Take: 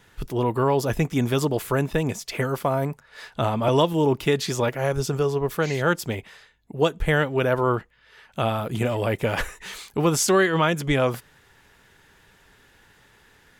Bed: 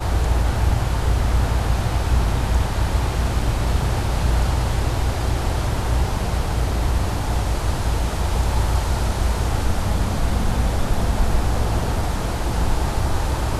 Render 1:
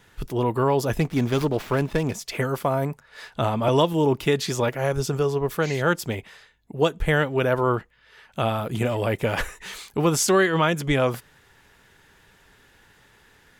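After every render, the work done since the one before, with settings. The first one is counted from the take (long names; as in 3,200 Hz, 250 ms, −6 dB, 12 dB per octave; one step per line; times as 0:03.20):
0:01.00–0:02.14: windowed peak hold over 5 samples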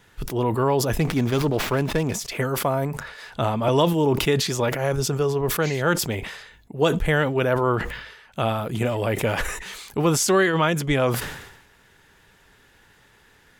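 level that may fall only so fast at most 61 dB per second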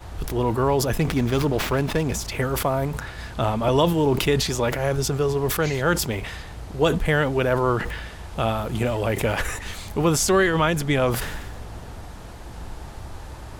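mix in bed −16 dB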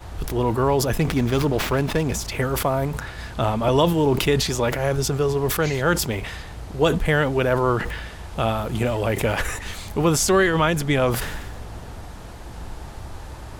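level +1 dB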